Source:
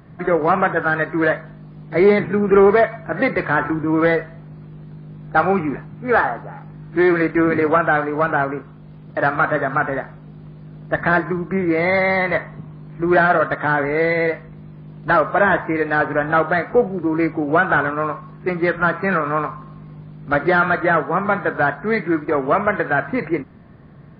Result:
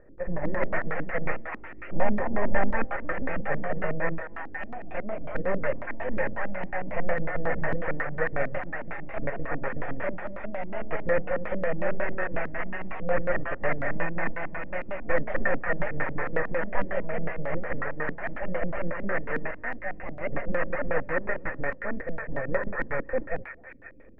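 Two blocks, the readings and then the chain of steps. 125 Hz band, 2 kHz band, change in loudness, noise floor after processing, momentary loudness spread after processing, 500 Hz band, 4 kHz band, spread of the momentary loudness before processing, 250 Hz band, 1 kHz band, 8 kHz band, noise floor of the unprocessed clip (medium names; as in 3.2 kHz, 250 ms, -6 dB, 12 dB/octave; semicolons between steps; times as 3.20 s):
-10.0 dB, -11.5 dB, -13.0 dB, -40 dBFS, 8 LU, -12.0 dB, under -15 dB, 13 LU, -14.5 dB, -14.5 dB, no reading, -40 dBFS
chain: treble shelf 2.1 kHz -11 dB; full-wave rectifier; cascade formant filter e; bass shelf 130 Hz +10.5 dB; ever faster or slower copies 178 ms, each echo +2 st, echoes 3, each echo -6 dB; on a send: repeats whose band climbs or falls 259 ms, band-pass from 1.2 kHz, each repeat 0.7 oct, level 0 dB; on the sum: LFO low-pass square 5.5 Hz 250–1500 Hz; trim +4 dB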